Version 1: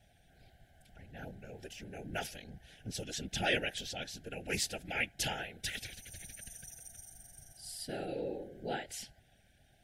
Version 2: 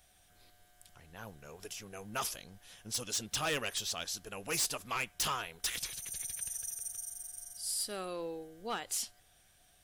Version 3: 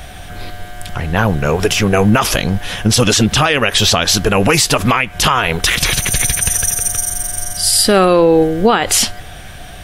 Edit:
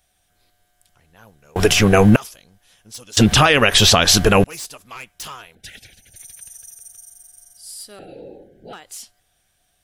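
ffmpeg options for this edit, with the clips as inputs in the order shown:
-filter_complex "[2:a]asplit=2[s0][s1];[0:a]asplit=2[s2][s3];[1:a]asplit=5[s4][s5][s6][s7][s8];[s4]atrim=end=1.562[s9];[s0]atrim=start=1.558:end=2.162[s10];[s5]atrim=start=2.158:end=3.172[s11];[s1]atrim=start=3.168:end=4.442[s12];[s6]atrim=start=4.438:end=5.552[s13];[s2]atrim=start=5.548:end=6.162[s14];[s7]atrim=start=6.158:end=7.992[s15];[s3]atrim=start=7.988:end=8.732[s16];[s8]atrim=start=8.728[s17];[s9][s10]acrossfade=d=0.004:c1=hsin:c2=hsin[s18];[s18][s11]acrossfade=d=0.004:c1=hsin:c2=hsin[s19];[s19][s12]acrossfade=d=0.004:c1=hsin:c2=hsin[s20];[s20][s13]acrossfade=d=0.004:c1=hsin:c2=hsin[s21];[s21][s14]acrossfade=d=0.004:c1=hsin:c2=hsin[s22];[s22][s15]acrossfade=d=0.004:c1=hsin:c2=hsin[s23];[s23][s16]acrossfade=d=0.004:c1=hsin:c2=hsin[s24];[s24][s17]acrossfade=d=0.004:c1=hsin:c2=hsin"

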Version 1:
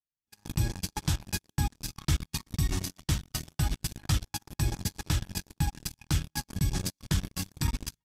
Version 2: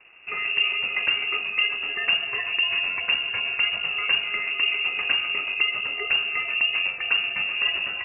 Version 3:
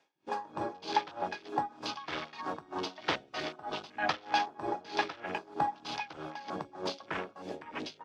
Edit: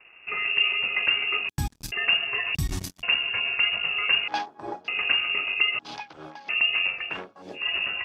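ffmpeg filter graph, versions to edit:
-filter_complex "[0:a]asplit=2[s0][s1];[2:a]asplit=3[s2][s3][s4];[1:a]asplit=6[s5][s6][s7][s8][s9][s10];[s5]atrim=end=1.492[s11];[s0]atrim=start=1.488:end=1.922[s12];[s6]atrim=start=1.918:end=2.552[s13];[s1]atrim=start=2.548:end=3.032[s14];[s7]atrim=start=3.028:end=4.282[s15];[s2]atrim=start=4.278:end=4.882[s16];[s8]atrim=start=4.878:end=5.792[s17];[s3]atrim=start=5.788:end=6.492[s18];[s9]atrim=start=6.488:end=7.19[s19];[s4]atrim=start=6.95:end=7.76[s20];[s10]atrim=start=7.52[s21];[s11][s12]acrossfade=d=0.004:c1=hsin:c2=hsin[s22];[s22][s13]acrossfade=d=0.004:c1=hsin:c2=hsin[s23];[s23][s14]acrossfade=d=0.004:c1=hsin:c2=hsin[s24];[s24][s15]acrossfade=d=0.004:c1=hsin:c2=hsin[s25];[s25][s16]acrossfade=d=0.004:c1=hsin:c2=hsin[s26];[s26][s17]acrossfade=d=0.004:c1=hsin:c2=hsin[s27];[s27][s18]acrossfade=d=0.004:c1=hsin:c2=hsin[s28];[s28][s19]acrossfade=d=0.004:c1=hsin:c2=hsin[s29];[s29][s20]acrossfade=d=0.24:c1=tri:c2=tri[s30];[s30][s21]acrossfade=d=0.24:c1=tri:c2=tri"

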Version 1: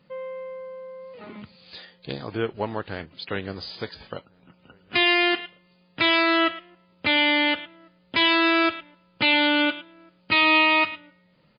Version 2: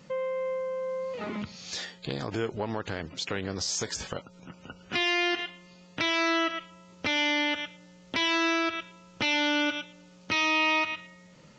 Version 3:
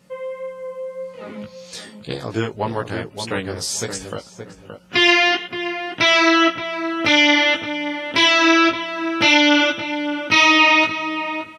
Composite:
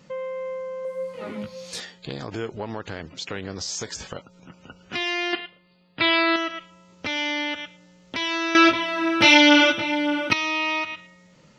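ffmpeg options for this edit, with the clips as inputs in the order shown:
-filter_complex "[2:a]asplit=2[s0][s1];[1:a]asplit=4[s2][s3][s4][s5];[s2]atrim=end=0.852[s6];[s0]atrim=start=0.848:end=1.802[s7];[s3]atrim=start=1.798:end=5.332[s8];[0:a]atrim=start=5.328:end=6.362[s9];[s4]atrim=start=6.358:end=8.552[s10];[s1]atrim=start=8.548:end=10.332[s11];[s5]atrim=start=10.328[s12];[s6][s7]acrossfade=d=0.004:c1=hsin:c2=hsin[s13];[s13][s8]acrossfade=d=0.004:c1=hsin:c2=hsin[s14];[s14][s9]acrossfade=d=0.004:c1=hsin:c2=hsin[s15];[s15][s10]acrossfade=d=0.004:c1=hsin:c2=hsin[s16];[s16][s11]acrossfade=d=0.004:c1=hsin:c2=hsin[s17];[s17][s12]acrossfade=d=0.004:c1=hsin:c2=hsin"

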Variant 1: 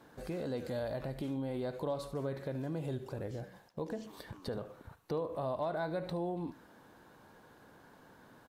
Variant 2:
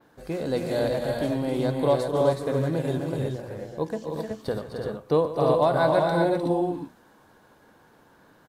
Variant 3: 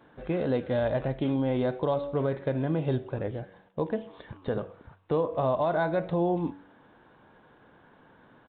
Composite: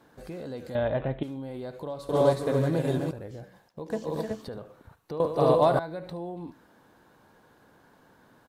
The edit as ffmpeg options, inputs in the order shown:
-filter_complex "[1:a]asplit=3[s0][s1][s2];[0:a]asplit=5[s3][s4][s5][s6][s7];[s3]atrim=end=0.752[s8];[2:a]atrim=start=0.748:end=1.232[s9];[s4]atrim=start=1.228:end=2.092[s10];[s0]atrim=start=2.088:end=3.112[s11];[s5]atrim=start=3.108:end=3.902[s12];[s1]atrim=start=3.898:end=4.452[s13];[s6]atrim=start=4.448:end=5.202[s14];[s2]atrim=start=5.198:end=5.792[s15];[s7]atrim=start=5.788[s16];[s8][s9]acrossfade=d=0.004:c1=hsin:c2=hsin[s17];[s17][s10]acrossfade=d=0.004:c1=hsin:c2=hsin[s18];[s18][s11]acrossfade=d=0.004:c1=hsin:c2=hsin[s19];[s19][s12]acrossfade=d=0.004:c1=hsin:c2=hsin[s20];[s20][s13]acrossfade=d=0.004:c1=hsin:c2=hsin[s21];[s21][s14]acrossfade=d=0.004:c1=hsin:c2=hsin[s22];[s22][s15]acrossfade=d=0.004:c1=hsin:c2=hsin[s23];[s23][s16]acrossfade=d=0.004:c1=hsin:c2=hsin"

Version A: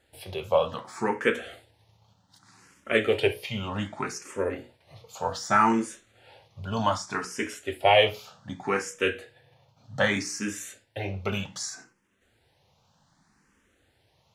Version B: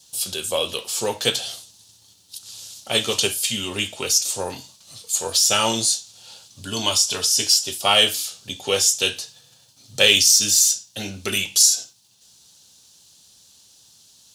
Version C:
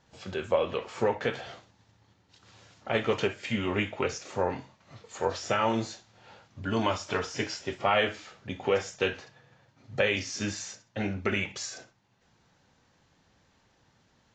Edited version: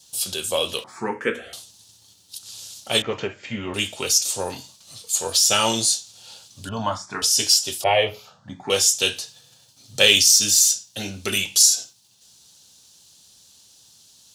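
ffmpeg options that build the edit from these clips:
-filter_complex "[0:a]asplit=3[s0][s1][s2];[1:a]asplit=5[s3][s4][s5][s6][s7];[s3]atrim=end=0.842[s8];[s0]atrim=start=0.838:end=1.532[s9];[s4]atrim=start=1.528:end=3.022[s10];[2:a]atrim=start=3.018:end=3.742[s11];[s5]atrim=start=3.738:end=6.692[s12];[s1]atrim=start=6.688:end=7.222[s13];[s6]atrim=start=7.218:end=7.842[s14];[s2]atrim=start=7.838:end=8.702[s15];[s7]atrim=start=8.698[s16];[s8][s9]acrossfade=d=0.004:c1=hsin:c2=hsin[s17];[s17][s10]acrossfade=d=0.004:c1=hsin:c2=hsin[s18];[s18][s11]acrossfade=d=0.004:c1=hsin:c2=hsin[s19];[s19][s12]acrossfade=d=0.004:c1=hsin:c2=hsin[s20];[s20][s13]acrossfade=d=0.004:c1=hsin:c2=hsin[s21];[s21][s14]acrossfade=d=0.004:c1=hsin:c2=hsin[s22];[s22][s15]acrossfade=d=0.004:c1=hsin:c2=hsin[s23];[s23][s16]acrossfade=d=0.004:c1=hsin:c2=hsin"

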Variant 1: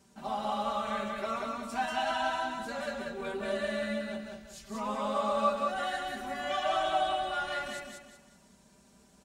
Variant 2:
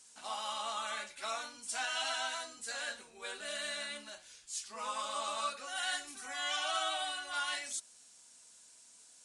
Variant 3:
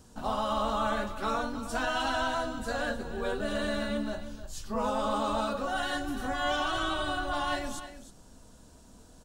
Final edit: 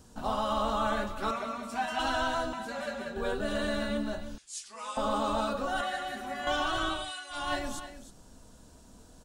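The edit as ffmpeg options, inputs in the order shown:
-filter_complex "[0:a]asplit=3[s0][s1][s2];[1:a]asplit=2[s3][s4];[2:a]asplit=6[s5][s6][s7][s8][s9][s10];[s5]atrim=end=1.312[s11];[s0]atrim=start=1.308:end=1.992[s12];[s6]atrim=start=1.988:end=2.532[s13];[s1]atrim=start=2.528:end=3.162[s14];[s7]atrim=start=3.158:end=4.382[s15];[s3]atrim=start=4.378:end=4.972[s16];[s8]atrim=start=4.968:end=5.812[s17];[s2]atrim=start=5.808:end=6.472[s18];[s9]atrim=start=6.468:end=7.12[s19];[s4]atrim=start=6.88:end=7.53[s20];[s10]atrim=start=7.29[s21];[s11][s12]acrossfade=d=0.004:c1=hsin:c2=hsin[s22];[s22][s13]acrossfade=d=0.004:c1=hsin:c2=hsin[s23];[s23][s14]acrossfade=d=0.004:c1=hsin:c2=hsin[s24];[s24][s15]acrossfade=d=0.004:c1=hsin:c2=hsin[s25];[s25][s16]acrossfade=d=0.004:c1=hsin:c2=hsin[s26];[s26][s17]acrossfade=d=0.004:c1=hsin:c2=hsin[s27];[s27][s18]acrossfade=d=0.004:c1=hsin:c2=hsin[s28];[s28][s19]acrossfade=d=0.004:c1=hsin:c2=hsin[s29];[s29][s20]acrossfade=d=0.24:c1=tri:c2=tri[s30];[s30][s21]acrossfade=d=0.24:c1=tri:c2=tri"

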